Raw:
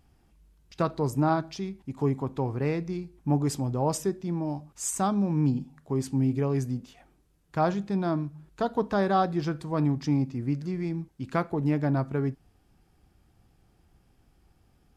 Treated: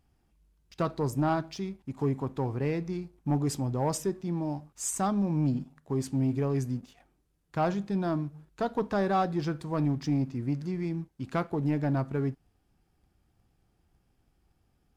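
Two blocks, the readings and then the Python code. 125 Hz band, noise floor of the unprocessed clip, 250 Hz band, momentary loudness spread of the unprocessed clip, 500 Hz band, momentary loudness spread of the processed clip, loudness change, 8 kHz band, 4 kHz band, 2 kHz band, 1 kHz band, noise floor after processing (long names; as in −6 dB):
−2.0 dB, −65 dBFS, −2.0 dB, 9 LU, −2.5 dB, 8 LU, −2.0 dB, −1.5 dB, −2.0 dB, −2.0 dB, −2.5 dB, −72 dBFS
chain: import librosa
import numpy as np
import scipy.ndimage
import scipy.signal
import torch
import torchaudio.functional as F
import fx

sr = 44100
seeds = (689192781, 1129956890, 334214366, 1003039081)

y = fx.leveller(x, sr, passes=1)
y = y * librosa.db_to_amplitude(-5.0)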